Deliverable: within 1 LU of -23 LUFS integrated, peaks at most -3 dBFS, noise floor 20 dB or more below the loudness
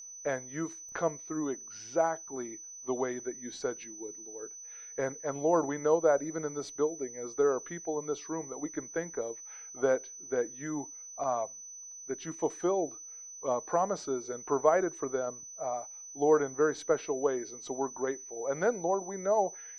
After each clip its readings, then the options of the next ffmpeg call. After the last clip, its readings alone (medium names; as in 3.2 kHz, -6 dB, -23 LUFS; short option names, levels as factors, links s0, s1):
steady tone 6 kHz; tone level -44 dBFS; loudness -32.5 LUFS; peak level -10.5 dBFS; loudness target -23.0 LUFS
-> -af "bandreject=f=6000:w=30"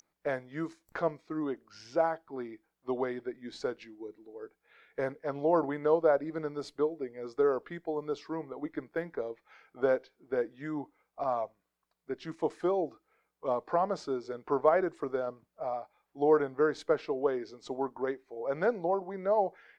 steady tone not found; loudness -32.5 LUFS; peak level -11.0 dBFS; loudness target -23.0 LUFS
-> -af "volume=2.99,alimiter=limit=0.708:level=0:latency=1"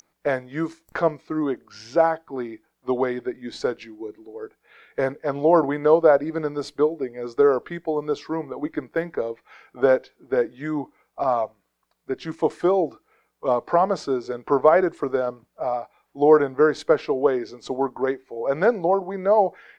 loudness -23.0 LUFS; peak level -3.0 dBFS; noise floor -73 dBFS